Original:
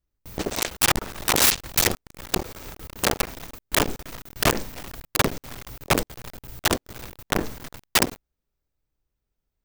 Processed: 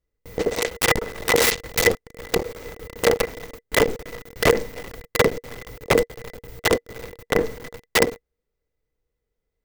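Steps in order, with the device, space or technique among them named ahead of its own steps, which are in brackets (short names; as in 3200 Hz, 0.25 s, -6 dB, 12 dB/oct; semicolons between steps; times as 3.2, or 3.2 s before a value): inside a helmet (high shelf 5700 Hz -5 dB; small resonant body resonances 470/2000 Hz, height 16 dB, ringing for 55 ms)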